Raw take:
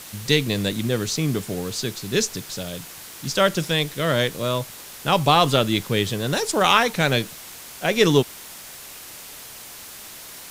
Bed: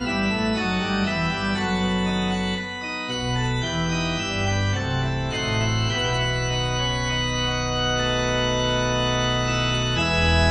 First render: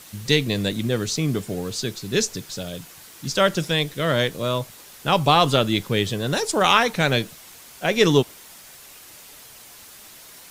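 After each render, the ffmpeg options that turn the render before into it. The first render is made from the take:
ffmpeg -i in.wav -af "afftdn=noise_reduction=6:noise_floor=-40" out.wav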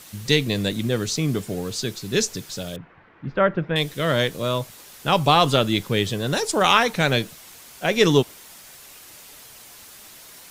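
ffmpeg -i in.wav -filter_complex "[0:a]asettb=1/sr,asplit=3[link_01][link_02][link_03];[link_01]atrim=end=2.764[link_04];[link_02]atrim=start=2.76:end=3.76,asetpts=PTS-STARTPTS,afade=type=in:duration=0.004:curve=qsin,afade=type=out:start_time=0.996:duration=0.004:curve=qsin,lowpass=frequency=2000:width=0.5412,lowpass=frequency=2000:width=1.3066[link_05];[link_03]atrim=start=3.756[link_06];[link_04][link_05]acrossfade=duration=0.004:curve1=hsin:curve2=qsin[link_07];[link_07][link_06]acrossfade=duration=0.004:curve1=qsin:curve2=hsin" out.wav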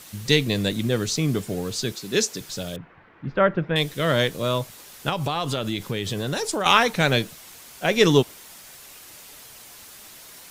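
ffmpeg -i in.wav -filter_complex "[0:a]asettb=1/sr,asplit=3[link_01][link_02][link_03];[link_01]atrim=end=1.924[link_04];[link_02]atrim=start=1.92:end=2.41,asetpts=PTS-STARTPTS,afade=type=in:duration=0.004:curve=qsin,afade=type=out:start_time=0.486:duration=0.004:curve=qsin,highpass=190[link_05];[link_03]atrim=start=2.406[link_06];[link_04][link_05]acrossfade=duration=0.004:curve1=hsin:curve2=qsin[link_07];[link_07][link_06]acrossfade=duration=0.004:curve1=qsin:curve2=hsin,asettb=1/sr,asplit=3[link_08][link_09][link_10];[link_08]atrim=end=5.094[link_11];[link_09]atrim=start=5.09:end=6.66,asetpts=PTS-STARTPTS,afade=type=in:duration=0.004:curve=qsin,afade=type=out:start_time=1.566:duration=0.004:curve=qsin,acompressor=threshold=-22dB:ratio=5:attack=3.2:release=140:knee=1:detection=peak[link_12];[link_10]atrim=start=6.656[link_13];[link_11][link_12]acrossfade=duration=0.004:curve1=hsin:curve2=qsin[link_14];[link_14][link_13]acrossfade=duration=0.004:curve1=qsin:curve2=hsin" out.wav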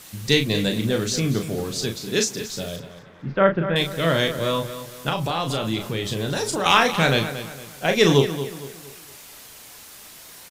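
ffmpeg -i in.wav -filter_complex "[0:a]asplit=2[link_01][link_02];[link_02]adelay=36,volume=-6dB[link_03];[link_01][link_03]amix=inputs=2:normalize=0,asplit=2[link_04][link_05];[link_05]adelay=230,lowpass=frequency=4900:poles=1,volume=-11.5dB,asplit=2[link_06][link_07];[link_07]adelay=230,lowpass=frequency=4900:poles=1,volume=0.38,asplit=2[link_08][link_09];[link_09]adelay=230,lowpass=frequency=4900:poles=1,volume=0.38,asplit=2[link_10][link_11];[link_11]adelay=230,lowpass=frequency=4900:poles=1,volume=0.38[link_12];[link_04][link_06][link_08][link_10][link_12]amix=inputs=5:normalize=0" out.wav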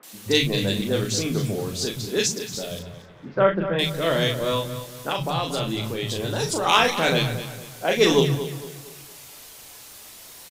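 ffmpeg -i in.wav -filter_complex "[0:a]acrossover=split=200|1600[link_01][link_02][link_03];[link_03]adelay=30[link_04];[link_01]adelay=130[link_05];[link_05][link_02][link_04]amix=inputs=3:normalize=0" out.wav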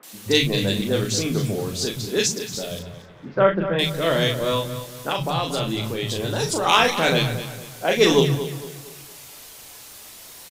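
ffmpeg -i in.wav -af "volume=1.5dB,alimiter=limit=-1dB:level=0:latency=1" out.wav

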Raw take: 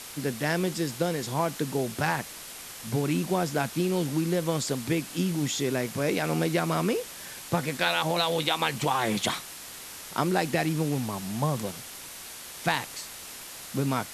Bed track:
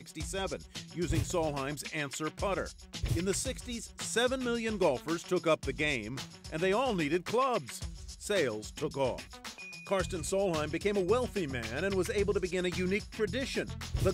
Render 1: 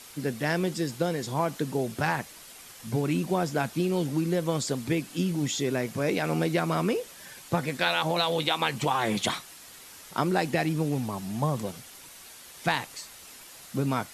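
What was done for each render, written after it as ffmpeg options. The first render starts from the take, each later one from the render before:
ffmpeg -i in.wav -af "afftdn=noise_reduction=7:noise_floor=-42" out.wav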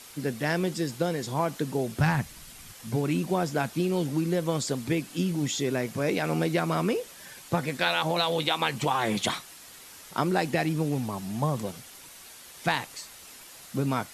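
ffmpeg -i in.wav -filter_complex "[0:a]asplit=3[link_01][link_02][link_03];[link_01]afade=type=out:start_time=1.99:duration=0.02[link_04];[link_02]asubboost=boost=8:cutoff=180,afade=type=in:start_time=1.99:duration=0.02,afade=type=out:start_time=2.72:duration=0.02[link_05];[link_03]afade=type=in:start_time=2.72:duration=0.02[link_06];[link_04][link_05][link_06]amix=inputs=3:normalize=0" out.wav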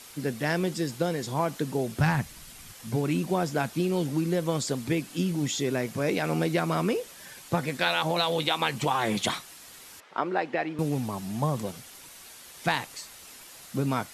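ffmpeg -i in.wav -filter_complex "[0:a]asettb=1/sr,asplit=3[link_01][link_02][link_03];[link_01]atrim=end=10.004[link_04];[link_02]atrim=start=10:end=10.79,asetpts=PTS-STARTPTS,afade=type=in:duration=0.004:curve=qsin,afade=type=out:start_time=0.786:duration=0.004:curve=qsin,highpass=360,lowpass=2400[link_05];[link_03]atrim=start=10.786[link_06];[link_04][link_05]acrossfade=duration=0.004:curve1=hsin:curve2=qsin[link_07];[link_07][link_06]acrossfade=duration=0.004:curve1=qsin:curve2=hsin" out.wav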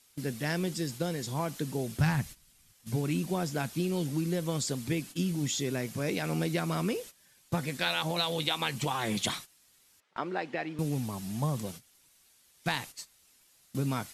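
ffmpeg -i in.wav -af "agate=range=-15dB:threshold=-39dB:ratio=16:detection=peak,equalizer=frequency=760:width=0.33:gain=-7" out.wav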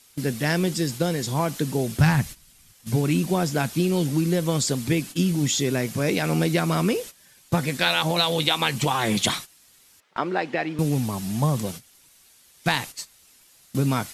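ffmpeg -i in.wav -af "volume=8.5dB" out.wav

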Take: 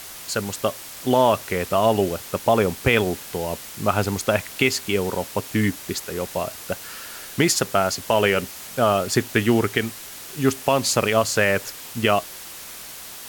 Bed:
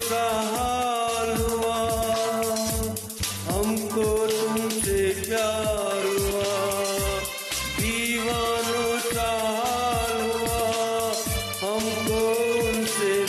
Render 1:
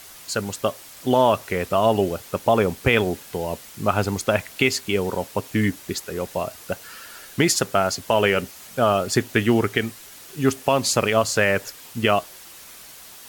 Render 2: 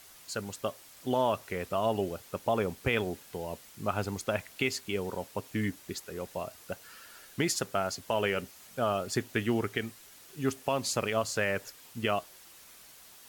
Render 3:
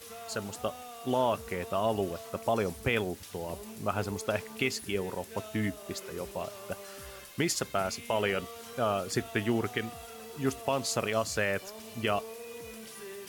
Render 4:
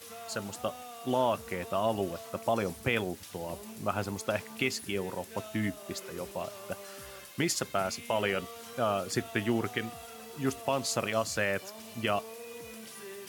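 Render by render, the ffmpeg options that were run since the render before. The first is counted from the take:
ffmpeg -i in.wav -af "afftdn=noise_reduction=6:noise_floor=-38" out.wav
ffmpeg -i in.wav -af "volume=-10.5dB" out.wav
ffmpeg -i in.wav -i bed.wav -filter_complex "[1:a]volume=-21dB[link_01];[0:a][link_01]amix=inputs=2:normalize=0" out.wav
ffmpeg -i in.wav -af "highpass=86,bandreject=frequency=430:width=12" out.wav

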